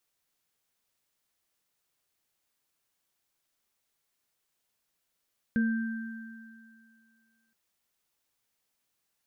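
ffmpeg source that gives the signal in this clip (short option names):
-f lavfi -i "aevalsrc='0.0794*pow(10,-3*t/2.12)*sin(2*PI*226*t)+0.0106*pow(10,-3*t/0.41)*sin(2*PI*466*t)+0.0224*pow(10,-3*t/2.74)*sin(2*PI*1570*t)':d=1.97:s=44100"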